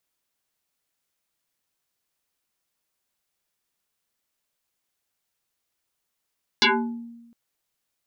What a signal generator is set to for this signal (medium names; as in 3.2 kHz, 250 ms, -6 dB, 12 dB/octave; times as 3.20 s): FM tone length 0.71 s, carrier 234 Hz, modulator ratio 2.67, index 8.6, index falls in 0.50 s exponential, decay 1.10 s, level -13 dB